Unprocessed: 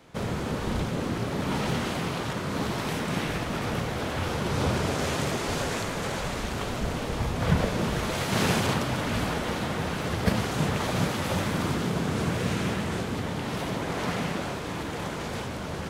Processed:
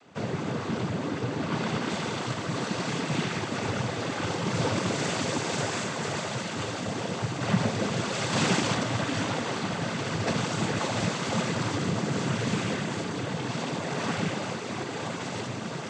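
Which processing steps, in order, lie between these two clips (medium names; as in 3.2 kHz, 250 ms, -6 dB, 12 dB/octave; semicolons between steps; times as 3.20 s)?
noise-vocoded speech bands 16; treble shelf 5 kHz -3.5 dB, from 1.90 s +5 dB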